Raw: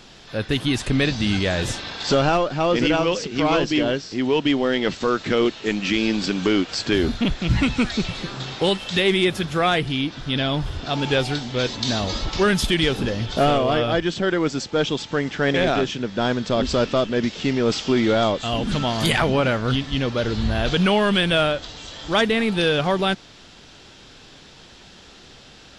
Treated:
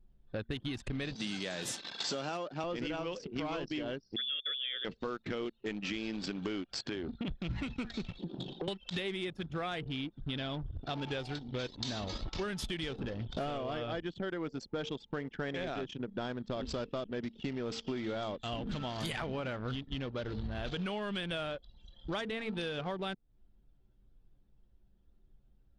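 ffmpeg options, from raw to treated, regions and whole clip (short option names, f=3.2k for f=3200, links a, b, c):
-filter_complex "[0:a]asettb=1/sr,asplit=3[a][b][c];[a]atrim=end=1.154[d];[b]atrim=start=1.15:end=2.64,asetpts=PTS-STARTPTS,afade=t=in:d=0.004:c=qsin,afade=t=out:st=1.486:d=0.004:c=qsin,highpass=f=150:w=0.5412,highpass=f=150:w=1.3066,aemphasis=mode=production:type=50kf[e];[c]atrim=start=2.636[f];[d][e]acrossfade=d=0.004:c1=hsin:c2=qsin[g];[g][f]acrossfade=d=0.004:c1=qsin:c2=hsin,asettb=1/sr,asplit=3[h][i][j];[h]atrim=end=4.164[k];[i]atrim=start=4.16:end=4.85,asetpts=PTS-STARTPTS,afade=t=in:d=0.004:c=qsin,afade=t=out:st=0.686:d=0.004:c=qsin,asuperstop=centerf=2800:order=12:qfactor=4,lowpass=f=3.1k:t=q:w=0.5098,lowpass=f=3.1k:t=q:w=0.6013,lowpass=f=3.1k:t=q:w=0.9,lowpass=f=3.1k:t=q:w=2.563,afreqshift=-3700[l];[j]atrim=start=4.846[m];[k][l]acrossfade=d=0.004:c1=hsin:c2=qsin[n];[n][m]acrossfade=d=0.004:c1=qsin:c2=hsin,asettb=1/sr,asplit=3[o][p][q];[o]atrim=end=6.784[r];[p]atrim=start=6.78:end=7.28,asetpts=PTS-STARTPTS,afade=t=in:d=0.004:c=qsin,afade=t=out:st=0.496:d=0.004:c=qsin,highpass=f=120:p=1,acompressor=threshold=-22dB:ratio=3:attack=3.2:release=140:knee=1:detection=peak[s];[q]atrim=start=7.276[t];[r][s]acrossfade=d=0.004:c1=hsin:c2=qsin[u];[u][t]acrossfade=d=0.004:c1=qsin:c2=hsin,asettb=1/sr,asplit=3[v][w][x];[v]atrim=end=8.184[y];[w]atrim=start=8.18:end=8.68,asetpts=PTS-STARTPTS,afade=t=in:d=0.004:c=qsin,afade=t=out:st=0.496:d=0.004:c=qsin,highpass=f=150:w=0.5412,highpass=f=150:w=1.3066,equalizer=f=170:t=q:w=4:g=10,equalizer=f=330:t=q:w=4:g=6,equalizer=f=600:t=q:w=4:g=4,equalizer=f=1.3k:t=q:w=4:g=-8,equalizer=f=2.1k:t=q:w=4:g=-9,equalizer=f=3.2k:t=q:w=4:g=4,lowpass=f=7.4k:w=0.5412,lowpass=f=7.4k:w=1.3066,acompressor=threshold=-23dB:ratio=12:attack=3.2:release=140:knee=1:detection=peak,asoftclip=type=hard:threshold=-23.5dB[z];[x]atrim=start=8.676[aa];[y][z]acrossfade=d=0.004:c1=hsin:c2=qsin[ab];[ab][aa]acrossfade=d=0.004:c1=qsin:c2=hsin,bandreject=f=227.9:t=h:w=4,bandreject=f=455.8:t=h:w=4,anlmdn=158,acompressor=threshold=-32dB:ratio=6,volume=-3.5dB"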